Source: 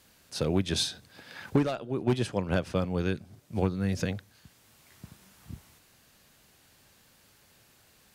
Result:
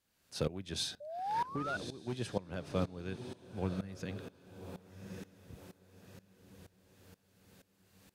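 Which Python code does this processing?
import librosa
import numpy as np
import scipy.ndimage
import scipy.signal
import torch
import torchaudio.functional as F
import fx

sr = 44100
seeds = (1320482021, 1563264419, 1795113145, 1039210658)

y = fx.echo_diffused(x, sr, ms=1146, feedback_pct=41, wet_db=-11)
y = fx.spec_paint(y, sr, seeds[0], shape='rise', start_s=1.0, length_s=0.77, low_hz=570.0, high_hz=1500.0, level_db=-28.0)
y = fx.tremolo_decay(y, sr, direction='swelling', hz=2.1, depth_db=19)
y = y * librosa.db_to_amplitude(-2.5)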